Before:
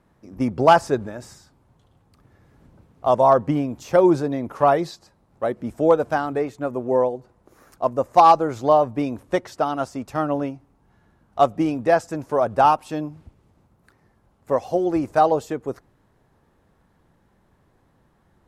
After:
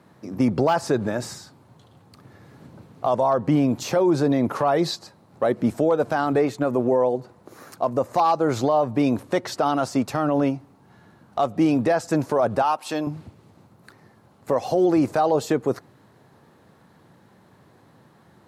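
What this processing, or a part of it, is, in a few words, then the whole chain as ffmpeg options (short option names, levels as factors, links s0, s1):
broadcast voice chain: -filter_complex "[0:a]highpass=f=100:w=0.5412,highpass=f=100:w=1.3066,deesser=0.5,acompressor=threshold=0.0891:ratio=5,equalizer=f=4200:t=o:w=0.31:g=5,alimiter=limit=0.1:level=0:latency=1:release=21,asettb=1/sr,asplit=3[s0][s1][s2];[s0]atrim=end=12.624[s3];[s1]atrim=start=12.62:end=13.07,asetpts=PTS-STARTPTS,afade=t=in:d=0.004:c=qsin,afade=t=out:st=0.446:d=0.004:c=qsin,highpass=f=570:p=1[s4];[s2]atrim=start=13.066[s5];[s3][s4]acrossfade=d=0.004:c1=hsin:c2=qsin[s6];[s6][s5]acrossfade=d=0.004:c1=qsin:c2=hsin,volume=2.66"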